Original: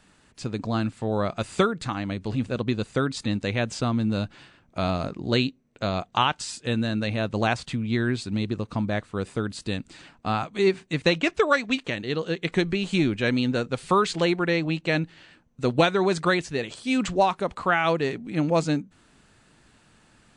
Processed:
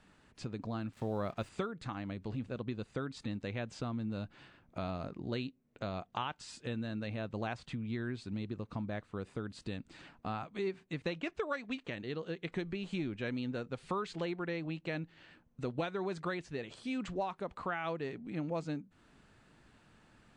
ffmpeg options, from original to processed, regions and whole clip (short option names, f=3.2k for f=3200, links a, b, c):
-filter_complex "[0:a]asettb=1/sr,asplit=3[a][b][c];[a]atrim=end=0.934[d];[b]atrim=start=0.93:end=1.49,asetpts=PTS-STARTPTS,afade=t=in:d=0.004:c=qsin,afade=t=out:st=0.556:d=0.004:c=qsin,acontrast=28,acrusher=bits=6:mix=0:aa=0.5[e];[c]atrim=start=1.486[f];[d][e]acrossfade=d=0.004:c1=hsin:c2=qsin[g];[g][f]acrossfade=d=0.004:c1=qsin:c2=hsin,highshelf=f=5k:g=-11.5,acompressor=threshold=-37dB:ratio=2,volume=-4.5dB"